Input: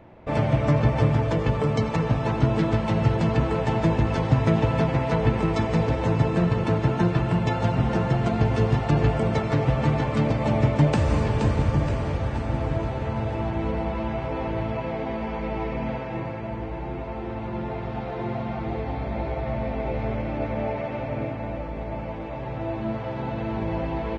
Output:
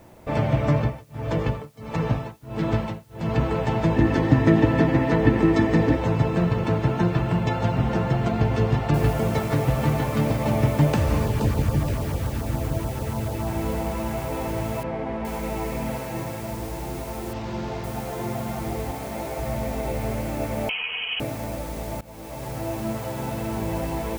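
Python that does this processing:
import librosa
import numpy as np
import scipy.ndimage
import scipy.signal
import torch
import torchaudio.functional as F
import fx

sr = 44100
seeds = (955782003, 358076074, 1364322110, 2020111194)

y = fx.tremolo(x, sr, hz=1.5, depth=0.99, at=(0.73, 3.36))
y = fx.small_body(y, sr, hz=(300.0, 1800.0), ring_ms=40, db=13, at=(3.96, 5.97))
y = fx.noise_floor_step(y, sr, seeds[0], at_s=8.94, before_db=-63, after_db=-44, tilt_db=0.0)
y = fx.filter_lfo_notch(y, sr, shape='saw_down', hz=6.9, low_hz=410.0, high_hz=2900.0, q=1.4, at=(11.25, 13.47))
y = fx.lowpass(y, sr, hz=2300.0, slope=12, at=(14.83, 15.25))
y = fx.resample_linear(y, sr, factor=4, at=(17.33, 17.84))
y = fx.highpass(y, sr, hz=200.0, slope=6, at=(18.91, 19.39))
y = fx.freq_invert(y, sr, carrier_hz=3100, at=(20.69, 21.2))
y = fx.edit(y, sr, fx.fade_in_from(start_s=22.01, length_s=0.66, curve='qsin', floor_db=-20.0), tone=tone)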